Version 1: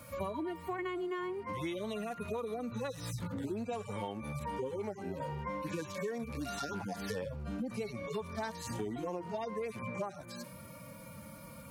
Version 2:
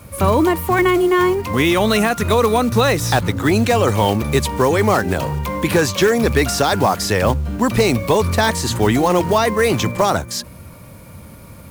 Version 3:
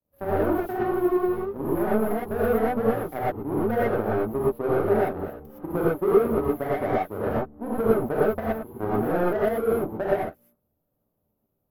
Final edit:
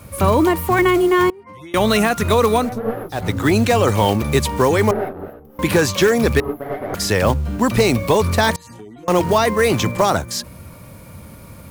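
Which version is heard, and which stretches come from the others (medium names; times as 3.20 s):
2
1.30–1.74 s: from 1
2.68–3.21 s: from 3, crossfade 0.24 s
4.91–5.59 s: from 3
6.40–6.94 s: from 3
8.56–9.08 s: from 1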